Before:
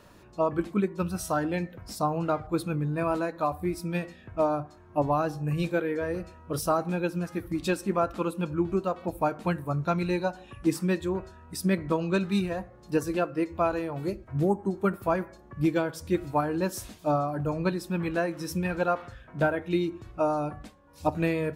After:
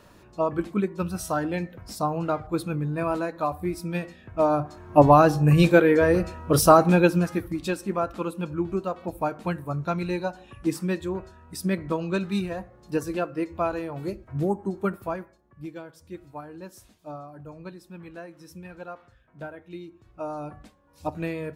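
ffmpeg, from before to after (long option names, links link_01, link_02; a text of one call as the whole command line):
ffmpeg -i in.wav -af "volume=20dB,afade=type=in:start_time=4.33:duration=0.67:silence=0.316228,afade=type=out:start_time=6.99:duration=0.58:silence=0.266073,afade=type=out:start_time=14.85:duration=0.54:silence=0.237137,afade=type=in:start_time=19.98:duration=0.55:silence=0.354813" out.wav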